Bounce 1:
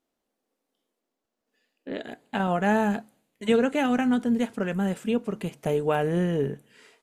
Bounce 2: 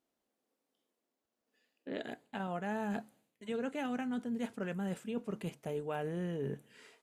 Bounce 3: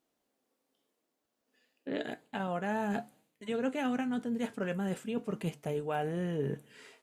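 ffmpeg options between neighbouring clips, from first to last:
-af "areverse,acompressor=threshold=-31dB:ratio=5,areverse,highpass=41,volume=-4dB"
-af "flanger=delay=6.2:depth=1.9:regen=74:speed=0.92:shape=triangular,volume=8.5dB"

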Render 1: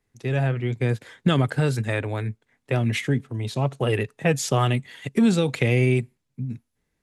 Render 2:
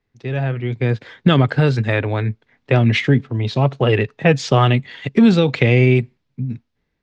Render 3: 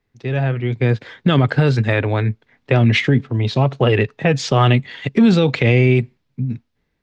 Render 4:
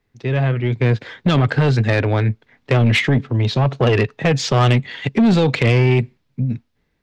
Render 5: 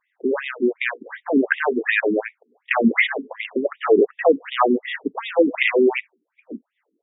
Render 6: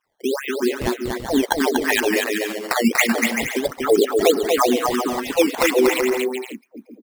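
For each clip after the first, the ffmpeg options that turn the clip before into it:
-af "lowpass=f=5k:w=0.5412,lowpass=f=5k:w=1.3066,dynaudnorm=f=330:g=5:m=8.5dB,volume=1dB"
-af "alimiter=level_in=6dB:limit=-1dB:release=50:level=0:latency=1,volume=-4dB"
-af "asoftclip=type=tanh:threshold=-11.5dB,volume=2.5dB"
-af "afftfilt=real='re*between(b*sr/1024,290*pow(2700/290,0.5+0.5*sin(2*PI*2.7*pts/sr))/1.41,290*pow(2700/290,0.5+0.5*sin(2*PI*2.7*pts/sr))*1.41)':imag='im*between(b*sr/1024,290*pow(2700/290,0.5+0.5*sin(2*PI*2.7*pts/sr))/1.41,290*pow(2700/290,0.5+0.5*sin(2*PI*2.7*pts/sr))*1.41)':win_size=1024:overlap=0.75,volume=6dB"
-af "acrusher=samples=10:mix=1:aa=0.000001:lfo=1:lforange=16:lforate=1.5,aecho=1:1:240|384|470.4|522.2|553.3:0.631|0.398|0.251|0.158|0.1,volume=-1dB"

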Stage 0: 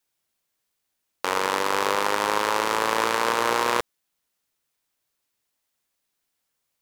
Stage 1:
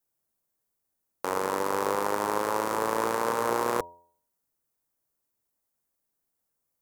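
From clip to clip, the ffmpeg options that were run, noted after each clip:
-af "equalizer=f=3.1k:t=o:w=2.2:g=-14.5,bandreject=f=86.5:t=h:w=4,bandreject=f=173:t=h:w=4,bandreject=f=259.5:t=h:w=4,bandreject=f=346:t=h:w=4,bandreject=f=432.5:t=h:w=4,bandreject=f=519:t=h:w=4,bandreject=f=605.5:t=h:w=4,bandreject=f=692:t=h:w=4,bandreject=f=778.5:t=h:w=4,bandreject=f=865:t=h:w=4,bandreject=f=951.5:t=h:w=4"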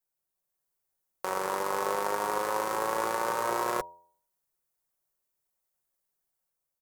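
-af "equalizer=f=240:t=o:w=0.9:g=-9.5,aecho=1:1:5.4:0.5,dynaudnorm=f=150:g=7:m=4dB,volume=-6dB"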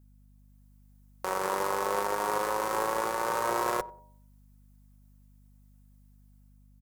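-filter_complex "[0:a]alimiter=limit=-22dB:level=0:latency=1:release=323,aeval=exprs='val(0)+0.000708*(sin(2*PI*50*n/s)+sin(2*PI*2*50*n/s)/2+sin(2*PI*3*50*n/s)/3+sin(2*PI*4*50*n/s)/4+sin(2*PI*5*50*n/s)/5)':c=same,asplit=2[a][b];[b]adelay=94,lowpass=f=1.1k:p=1,volume=-21dB,asplit=2[c][d];[d]adelay=94,lowpass=f=1.1k:p=1,volume=0.26[e];[a][c][e]amix=inputs=3:normalize=0,volume=6.5dB"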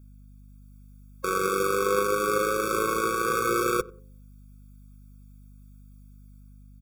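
-af "afftfilt=real='re*eq(mod(floor(b*sr/1024/540),2),0)':imag='im*eq(mod(floor(b*sr/1024/540),2),0)':win_size=1024:overlap=0.75,volume=8.5dB"

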